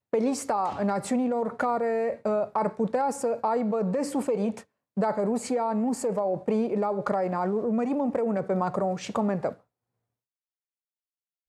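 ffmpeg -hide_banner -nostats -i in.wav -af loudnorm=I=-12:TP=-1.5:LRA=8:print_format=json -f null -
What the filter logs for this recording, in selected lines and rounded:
"input_i" : "-27.7",
"input_tp" : "-13.4",
"input_lra" : "6.1",
"input_thresh" : "-37.8",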